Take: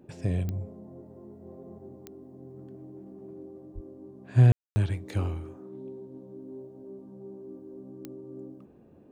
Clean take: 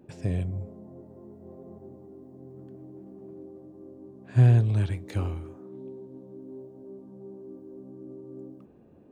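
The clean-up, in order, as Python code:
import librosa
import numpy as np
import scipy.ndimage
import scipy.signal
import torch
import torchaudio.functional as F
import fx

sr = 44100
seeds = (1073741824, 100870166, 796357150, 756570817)

y = fx.fix_declick_ar(x, sr, threshold=10.0)
y = fx.fix_deplosive(y, sr, at_s=(3.74,))
y = fx.fix_ambience(y, sr, seeds[0], print_start_s=8.6, print_end_s=9.1, start_s=4.52, end_s=4.76)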